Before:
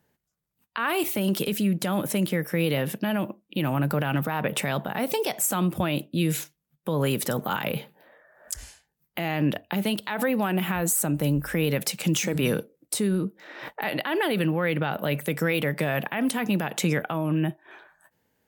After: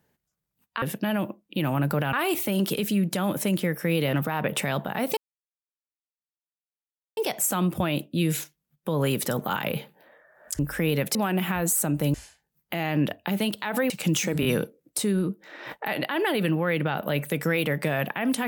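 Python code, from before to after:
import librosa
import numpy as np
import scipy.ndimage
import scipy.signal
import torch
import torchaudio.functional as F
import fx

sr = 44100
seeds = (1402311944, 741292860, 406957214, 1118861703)

y = fx.edit(x, sr, fx.move(start_s=2.82, length_s=1.31, to_s=0.82),
    fx.insert_silence(at_s=5.17, length_s=2.0),
    fx.swap(start_s=8.59, length_s=1.76, other_s=11.34, other_length_s=0.56),
    fx.stutter(start_s=12.41, slice_s=0.02, count=3), tone=tone)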